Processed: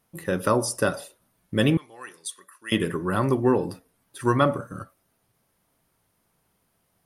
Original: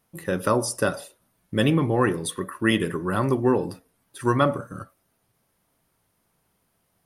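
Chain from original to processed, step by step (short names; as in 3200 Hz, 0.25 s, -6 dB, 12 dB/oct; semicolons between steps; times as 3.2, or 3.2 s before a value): 1.77–2.72 band-pass 6700 Hz, Q 1.1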